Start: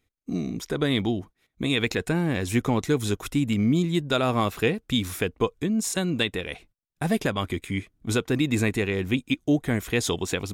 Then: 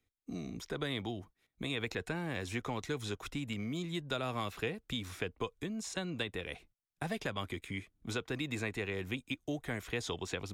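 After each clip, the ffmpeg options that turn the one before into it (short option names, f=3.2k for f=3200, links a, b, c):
-filter_complex "[0:a]acrossover=split=130|460|1600|6500[a][b][c][d][e];[a]acompressor=threshold=-38dB:ratio=4[f];[b]acompressor=threshold=-36dB:ratio=4[g];[c]acompressor=threshold=-30dB:ratio=4[h];[d]acompressor=threshold=-31dB:ratio=4[i];[e]acompressor=threshold=-53dB:ratio=4[j];[f][g][h][i][j]amix=inputs=5:normalize=0,volume=-7.5dB"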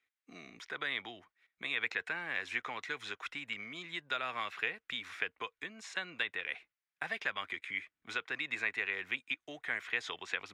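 -af "bandpass=f=1.9k:t=q:w=1.7:csg=0,volume=8dB"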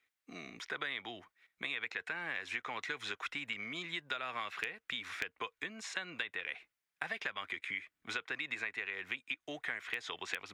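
-filter_complex "[0:a]asplit=2[a][b];[b]aeval=exprs='(mod(7.5*val(0)+1,2)-1)/7.5':c=same,volume=-5.5dB[c];[a][c]amix=inputs=2:normalize=0,acompressor=threshold=-35dB:ratio=6"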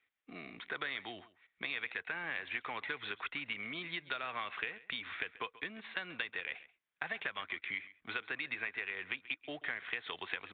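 -af "aresample=8000,acrusher=bits=5:mode=log:mix=0:aa=0.000001,aresample=44100,aecho=1:1:135:0.119"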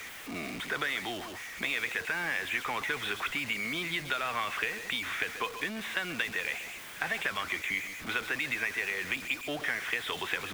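-af "aeval=exprs='val(0)+0.5*0.00841*sgn(val(0))':c=same,volume=5dB"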